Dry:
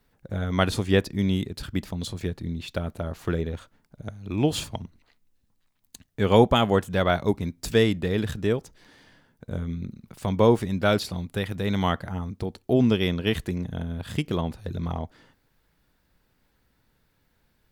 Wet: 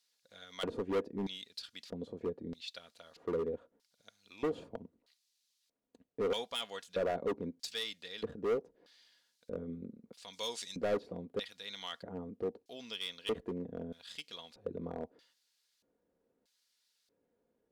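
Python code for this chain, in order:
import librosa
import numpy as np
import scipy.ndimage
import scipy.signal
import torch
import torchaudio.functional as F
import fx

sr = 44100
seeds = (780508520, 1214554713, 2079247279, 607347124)

y = fx.dmg_noise_colour(x, sr, seeds[0], colour='blue', level_db=-66.0)
y = fx.peak_eq(y, sr, hz=7500.0, db=14.5, octaves=1.7, at=(10.33, 10.96))
y = fx.filter_lfo_bandpass(y, sr, shape='square', hz=0.79, low_hz=400.0, high_hz=4400.0, q=2.0)
y = np.clip(10.0 ** (29.0 / 20.0) * y, -1.0, 1.0) / 10.0 ** (29.0 / 20.0)
y = fx.peak_eq(y, sr, hz=540.0, db=5.5, octaves=0.43)
y = y + 0.34 * np.pad(y, (int(4.2 * sr / 1000.0), 0))[:len(y)]
y = F.gain(torch.from_numpy(y), -2.5).numpy()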